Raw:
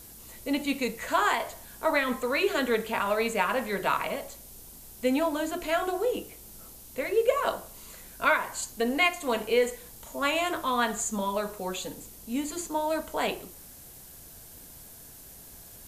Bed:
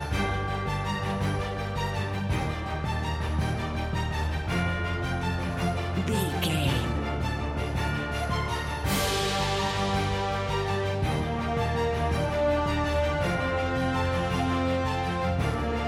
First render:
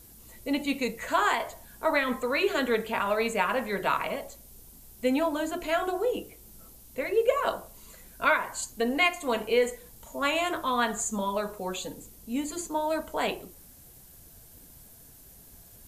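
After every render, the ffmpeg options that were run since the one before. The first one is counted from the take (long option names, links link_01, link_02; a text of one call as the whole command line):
ffmpeg -i in.wav -af "afftdn=noise_reduction=6:noise_floor=-48" out.wav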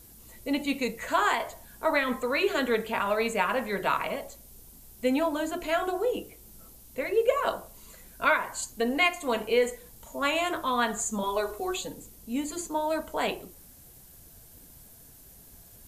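ffmpeg -i in.wav -filter_complex "[0:a]asettb=1/sr,asplit=3[link_01][link_02][link_03];[link_01]atrim=end=11.234[link_04];[link_02]atrim=start=11.23:end=11.81,asetpts=PTS-STARTPTS,afade=type=in:duration=0.004:curve=qsin,afade=type=out:start_time=0.576:duration=0.004:curve=qsin,aecho=1:1:2.7:0.91,atrim=end_sample=25578[link_05];[link_03]atrim=start=11.806[link_06];[link_04][link_05]acrossfade=duration=0.004:curve1=hsin:curve2=qsin[link_07];[link_07][link_06]acrossfade=duration=0.004:curve1=qsin:curve2=hsin" out.wav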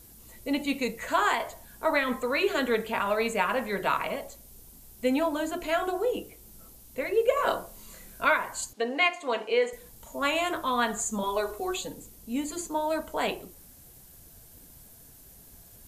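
ffmpeg -i in.wav -filter_complex "[0:a]asettb=1/sr,asplit=3[link_01][link_02][link_03];[link_01]atrim=end=7.344[link_04];[link_02]atrim=start=7.34:end=8.22,asetpts=PTS-STARTPTS,afade=type=in:duration=0.004:curve=qsin,afade=type=out:start_time=0.876:duration=0.004:curve=qsin,asplit=2[link_05][link_06];[link_06]adelay=28,volume=-2dB[link_07];[link_05][link_07]amix=inputs=2:normalize=0,atrim=end_sample=38808[link_08];[link_03]atrim=start=8.216[link_09];[link_04][link_08]acrossfade=duration=0.004:curve1=hsin:curve2=qsin[link_10];[link_10][link_09]acrossfade=duration=0.004:curve1=qsin:curve2=hsin,asettb=1/sr,asplit=3[link_11][link_12][link_13];[link_11]atrim=end=8.734[link_14];[link_12]atrim=start=8.73:end=9.73,asetpts=PTS-STARTPTS,afade=type=in:duration=0.004:curve=qsin,afade=type=out:start_time=0.996:duration=0.004:curve=qsin,highpass=340,lowpass=5300[link_15];[link_13]atrim=start=9.726[link_16];[link_14][link_15]acrossfade=duration=0.004:curve1=hsin:curve2=qsin[link_17];[link_17][link_16]acrossfade=duration=0.004:curve1=qsin:curve2=hsin" out.wav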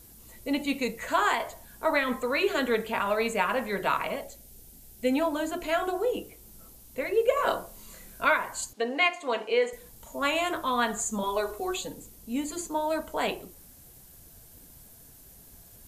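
ffmpeg -i in.wav -filter_complex "[0:a]asettb=1/sr,asplit=3[link_01][link_02][link_03];[link_01]atrim=end=4.244[link_04];[link_02]atrim=start=4.24:end=5.13,asetpts=PTS-STARTPTS,afade=type=in:duration=0.004:curve=qsin,afade=type=out:start_time=0.886:duration=0.004:curve=qsin,equalizer=frequency=1100:width=4.5:gain=-13[link_05];[link_03]atrim=start=5.126[link_06];[link_04][link_05]acrossfade=duration=0.004:curve1=hsin:curve2=qsin[link_07];[link_07][link_06]acrossfade=duration=0.004:curve1=qsin:curve2=hsin" out.wav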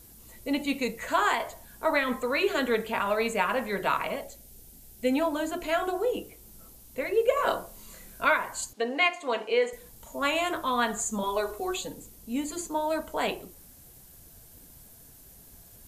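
ffmpeg -i in.wav -af anull out.wav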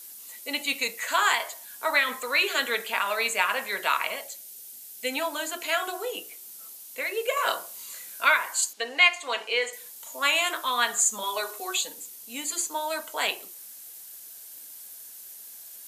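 ffmpeg -i in.wav -af "highpass=280,tiltshelf=frequency=970:gain=-9.5" out.wav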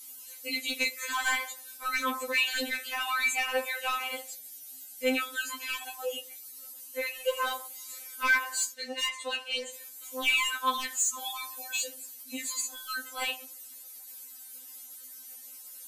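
ffmpeg -i in.wav -af "asoftclip=type=tanh:threshold=-18dB,afftfilt=real='re*3.46*eq(mod(b,12),0)':imag='im*3.46*eq(mod(b,12),0)':win_size=2048:overlap=0.75" out.wav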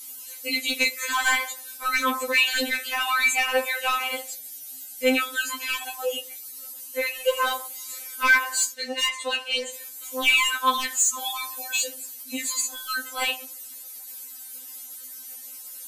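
ffmpeg -i in.wav -af "volume=6.5dB" out.wav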